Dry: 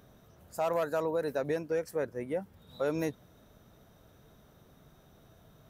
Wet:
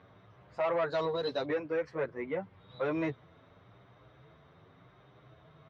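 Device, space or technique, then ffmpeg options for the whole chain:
barber-pole flanger into a guitar amplifier: -filter_complex "[0:a]asettb=1/sr,asplit=3[s0][s1][s2];[s0]atrim=end=0.904[s3];[s1]atrim=start=0.9:end=1.45,asetpts=PTS-STARTPTS,afade=t=in:d=0.004:c=qsin,afade=t=out:st=0.546:d=0.004:c=qsin,highshelf=f=2900:t=q:w=3:g=10[s4];[s2]atrim=start=1.446[s5];[s3][s4]acrossfade=d=0.004:c1=hsin:c2=qsin[s6];[s6][s5]acrossfade=d=0.004:c1=qsin:c2=hsin,asplit=2[s7][s8];[s8]adelay=8.5,afreqshift=0.86[s9];[s7][s9]amix=inputs=2:normalize=1,asoftclip=type=tanh:threshold=0.0398,highpass=87,equalizer=f=120:t=q:w=4:g=5,equalizer=f=220:t=q:w=4:g=-9,equalizer=f=1100:t=q:w=4:g=7,equalizer=f=2100:t=q:w=4:g=7,lowpass=f=3800:w=0.5412,lowpass=f=3800:w=1.3066,volume=1.58"

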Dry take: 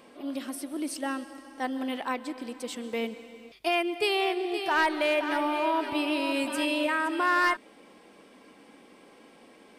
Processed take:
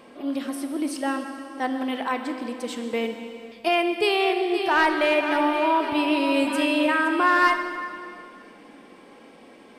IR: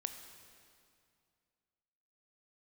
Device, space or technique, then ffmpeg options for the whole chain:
swimming-pool hall: -filter_complex "[1:a]atrim=start_sample=2205[s0];[0:a][s0]afir=irnorm=-1:irlink=0,highshelf=f=4400:g=-6,volume=2.24"

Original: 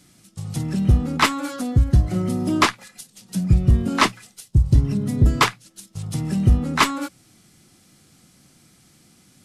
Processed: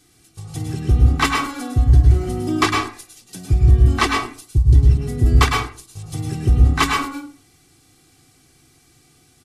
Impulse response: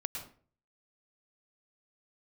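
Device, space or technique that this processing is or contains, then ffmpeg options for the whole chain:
microphone above a desk: -filter_complex "[0:a]aecho=1:1:2.6:0.79[s0];[1:a]atrim=start_sample=2205[s1];[s0][s1]afir=irnorm=-1:irlink=0,volume=0.794"

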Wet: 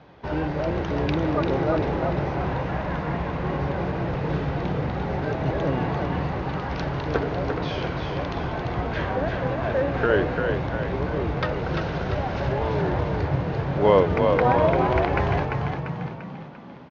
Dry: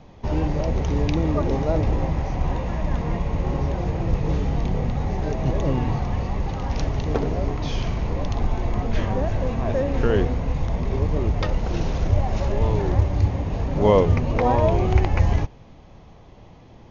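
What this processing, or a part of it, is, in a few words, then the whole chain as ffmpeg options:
frequency-shifting delay pedal into a guitar cabinet: -filter_complex "[0:a]asplit=7[s0][s1][s2][s3][s4][s5][s6];[s1]adelay=344,afreqshift=36,volume=0.562[s7];[s2]adelay=688,afreqshift=72,volume=0.282[s8];[s3]adelay=1032,afreqshift=108,volume=0.141[s9];[s4]adelay=1376,afreqshift=144,volume=0.07[s10];[s5]adelay=1720,afreqshift=180,volume=0.0351[s11];[s6]adelay=2064,afreqshift=216,volume=0.0176[s12];[s0][s7][s8][s9][s10][s11][s12]amix=inputs=7:normalize=0,highpass=100,equalizer=f=100:t=q:w=4:g=-8,equalizer=f=220:t=q:w=4:g=-8,equalizer=f=1500:t=q:w=4:g=10,lowpass=f=4600:w=0.5412,lowpass=f=4600:w=1.3066"

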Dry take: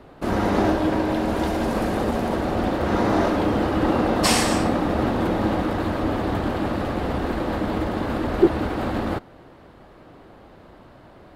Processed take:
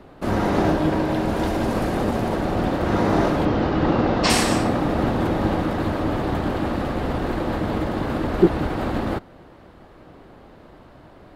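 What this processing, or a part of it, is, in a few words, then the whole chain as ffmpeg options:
octave pedal: -filter_complex "[0:a]asplit=2[s0][s1];[s1]asetrate=22050,aresample=44100,atempo=2,volume=0.447[s2];[s0][s2]amix=inputs=2:normalize=0,asettb=1/sr,asplit=3[s3][s4][s5];[s3]atrim=end=3.454[s6];[s4]atrim=start=3.45:end=4.3,asetpts=PTS-STARTPTS,afade=t=in:d=0.004:c=qsin,afade=t=out:st=0.846:d=0.004:c=qsin,lowpass=f=6100:w=0.5412,lowpass=f=6100:w=1.3066[s7];[s5]atrim=start=4.296[s8];[s6][s7]acrossfade=d=0.004:c1=hsin:c2=qsin[s9];[s9][s8]acrossfade=d=0.004:c1=qsin:c2=hsin"

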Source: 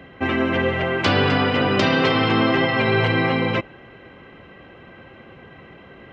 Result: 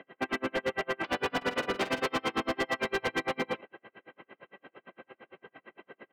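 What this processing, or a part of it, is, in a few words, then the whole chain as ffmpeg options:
helicopter radio: -filter_complex "[0:a]highpass=310,lowpass=2900,aeval=exprs='val(0)*pow(10,-39*(0.5-0.5*cos(2*PI*8.8*n/s))/20)':c=same,asoftclip=type=hard:threshold=0.0562,asplit=3[s0][s1][s2];[s0]afade=t=out:st=1.41:d=0.02[s3];[s1]asplit=2[s4][s5];[s5]adelay=47,volume=0.251[s6];[s4][s6]amix=inputs=2:normalize=0,afade=t=in:st=1.41:d=0.02,afade=t=out:st=2.02:d=0.02[s7];[s2]afade=t=in:st=2.02:d=0.02[s8];[s3][s7][s8]amix=inputs=3:normalize=0"

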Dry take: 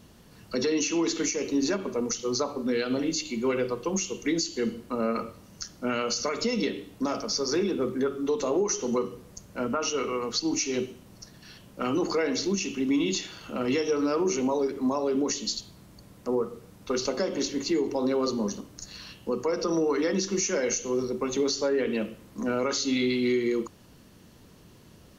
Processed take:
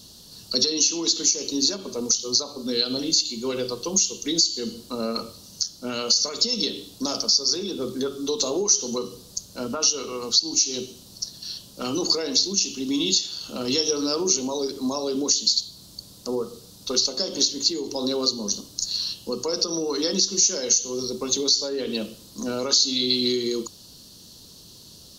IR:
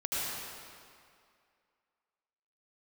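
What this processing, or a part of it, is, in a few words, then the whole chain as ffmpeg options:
over-bright horn tweeter: -af "highshelf=f=3000:t=q:w=3:g=12,alimiter=limit=0.398:level=0:latency=1:release=375"

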